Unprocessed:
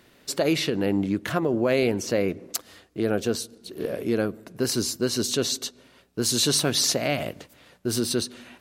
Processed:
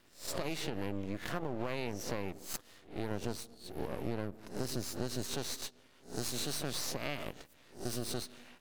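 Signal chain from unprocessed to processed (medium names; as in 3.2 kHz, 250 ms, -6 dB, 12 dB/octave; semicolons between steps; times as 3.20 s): reverse spectral sustain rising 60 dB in 0.34 s; 3.11–5.25 s: bass shelf 180 Hz +9 dB; compression, threshold -24 dBFS, peak gain reduction 8.5 dB; half-wave rectifier; trim -6.5 dB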